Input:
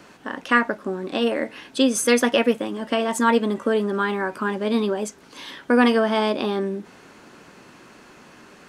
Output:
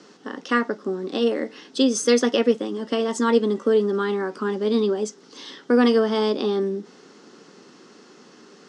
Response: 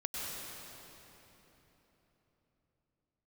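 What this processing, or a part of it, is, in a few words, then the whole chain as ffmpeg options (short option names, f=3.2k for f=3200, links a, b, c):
television speaker: -af "highpass=f=170:w=0.5412,highpass=f=170:w=1.3066,equalizer=f=430:t=q:w=4:g=5,equalizer=f=630:t=q:w=4:g=-8,equalizer=f=960:t=q:w=4:g=-6,equalizer=f=1.6k:t=q:w=4:g=-6,equalizer=f=2.4k:t=q:w=4:g=-10,equalizer=f=5.3k:t=q:w=4:g=6,lowpass=f=7.5k:w=0.5412,lowpass=f=7.5k:w=1.3066"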